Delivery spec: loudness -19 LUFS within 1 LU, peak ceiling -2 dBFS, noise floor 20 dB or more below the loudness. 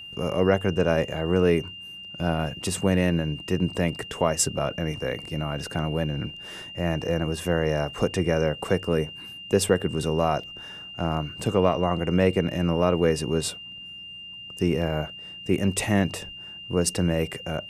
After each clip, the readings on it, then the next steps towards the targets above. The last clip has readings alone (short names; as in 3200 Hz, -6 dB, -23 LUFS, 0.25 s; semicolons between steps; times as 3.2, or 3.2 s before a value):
steady tone 2800 Hz; tone level -38 dBFS; loudness -25.5 LUFS; peak -6.0 dBFS; loudness target -19.0 LUFS
-> notch 2800 Hz, Q 30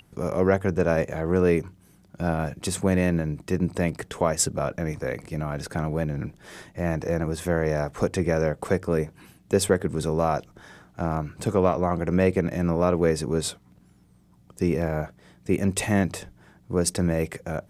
steady tone none; loudness -25.5 LUFS; peak -6.0 dBFS; loudness target -19.0 LUFS
-> gain +6.5 dB; limiter -2 dBFS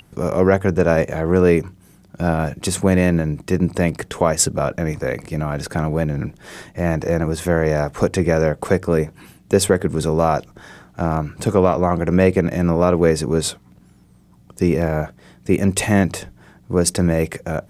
loudness -19.0 LUFS; peak -2.0 dBFS; noise floor -50 dBFS